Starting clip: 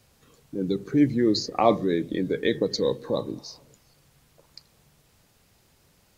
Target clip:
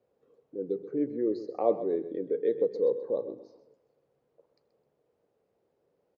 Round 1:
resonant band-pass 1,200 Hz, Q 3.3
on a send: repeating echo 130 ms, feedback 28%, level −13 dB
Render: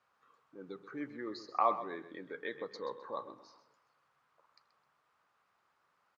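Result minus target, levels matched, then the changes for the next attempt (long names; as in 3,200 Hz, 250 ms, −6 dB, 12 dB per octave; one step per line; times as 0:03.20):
1,000 Hz band +13.5 dB
change: resonant band-pass 470 Hz, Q 3.3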